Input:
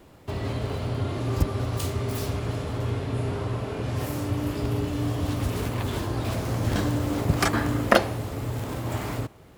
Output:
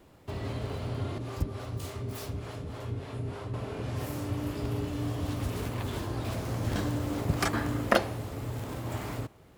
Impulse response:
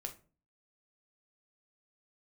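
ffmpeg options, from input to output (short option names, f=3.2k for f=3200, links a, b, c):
-filter_complex "[0:a]asettb=1/sr,asplit=3[a][b][c];[a]atrim=end=1.184[d];[b]atrim=start=1.18:end=3.54,asetpts=PTS-STARTPTS,afade=t=in:d=0.004:c=qsin,afade=t=out:st=2.356:d=0.004:c=qsin,acrossover=split=420[e][f];[e]aeval=exprs='val(0)*(1-0.7/2+0.7/2*cos(2*PI*3.4*n/s))':c=same[g];[f]aeval=exprs='val(0)*(1-0.7/2-0.7/2*cos(2*PI*3.4*n/s))':c=same[h];[g][h]amix=inputs=2:normalize=0[i];[c]atrim=start=3.536[j];[d][i]acrossfade=d=0.004:c1=hsin:c2=qsin[k];[k][j]acrossfade=d=0.004:c1=qsin:c2=hsin,volume=-5.5dB"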